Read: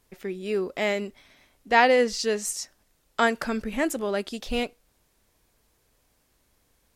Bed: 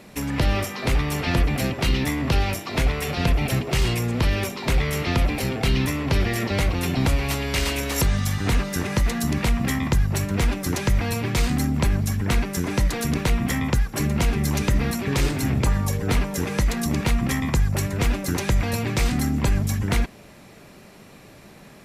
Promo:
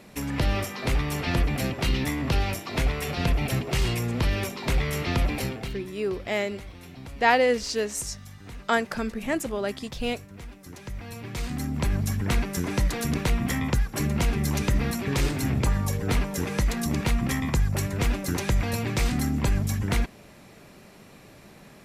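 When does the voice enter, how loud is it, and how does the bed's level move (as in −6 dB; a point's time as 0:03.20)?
5.50 s, −1.5 dB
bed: 0:05.44 −3.5 dB
0:05.86 −20.5 dB
0:10.56 −20.5 dB
0:12.01 −3 dB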